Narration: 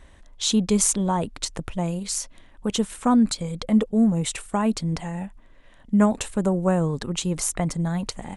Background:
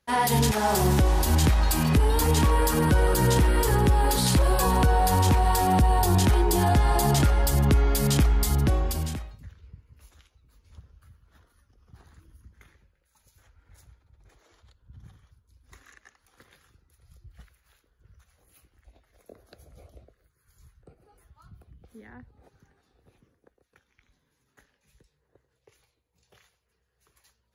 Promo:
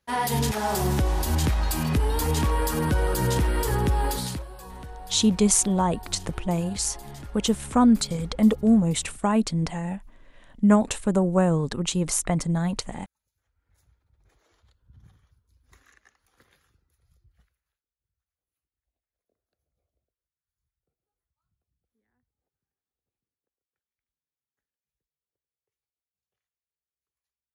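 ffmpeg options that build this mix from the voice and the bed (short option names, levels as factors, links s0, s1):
-filter_complex "[0:a]adelay=4700,volume=1.06[s0];[1:a]volume=4.47,afade=t=out:st=4.05:d=0.41:silence=0.133352,afade=t=in:st=13.42:d=1.01:silence=0.16788,afade=t=out:st=16.47:d=1.34:silence=0.0473151[s1];[s0][s1]amix=inputs=2:normalize=0"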